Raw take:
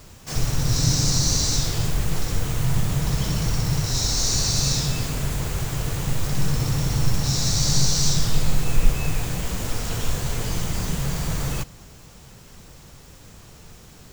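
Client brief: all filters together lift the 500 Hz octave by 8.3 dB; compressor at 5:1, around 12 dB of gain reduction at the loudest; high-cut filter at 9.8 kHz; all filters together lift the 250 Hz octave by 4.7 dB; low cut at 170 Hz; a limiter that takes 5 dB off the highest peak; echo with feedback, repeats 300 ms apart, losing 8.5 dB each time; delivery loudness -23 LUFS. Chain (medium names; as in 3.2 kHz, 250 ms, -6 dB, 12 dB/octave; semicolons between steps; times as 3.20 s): high-pass 170 Hz; low-pass 9.8 kHz; peaking EQ 250 Hz +9 dB; peaking EQ 500 Hz +7.5 dB; compression 5:1, threshold -32 dBFS; peak limiter -26 dBFS; feedback delay 300 ms, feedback 38%, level -8.5 dB; trim +12.5 dB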